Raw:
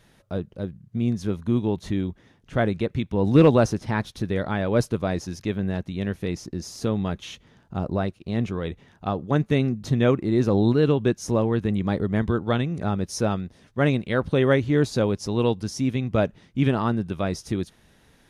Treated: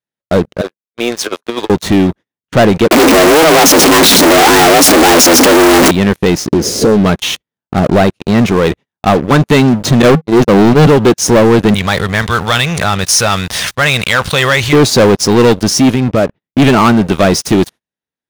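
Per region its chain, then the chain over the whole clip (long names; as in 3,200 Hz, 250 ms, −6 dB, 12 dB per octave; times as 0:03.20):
0:00.61–0:01.70: high-pass filter 440 Hz 24 dB per octave + compressor whose output falls as the input rises −37 dBFS, ratio −0.5
0:02.91–0:05.91: sign of each sample alone + frequency shifter +160 Hz
0:06.51–0:07.06: low shelf with overshoot 680 Hz +11.5 dB, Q 3 + downward compressor 10 to 1, threshold −22 dBFS + double-tracking delay 14 ms −13 dB
0:10.02–0:10.87: noise gate −21 dBFS, range −44 dB + parametric band 160 Hz +14.5 dB 0.22 octaves
0:11.74–0:14.73: guitar amp tone stack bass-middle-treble 10-0-10 + envelope flattener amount 70%
0:15.94–0:16.58: high-frequency loss of the air 250 metres + downward compressor 10 to 1, threshold −24 dBFS
whole clip: high-pass filter 230 Hz 6 dB per octave; noise gate −45 dBFS, range −27 dB; leveller curve on the samples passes 5; level +5 dB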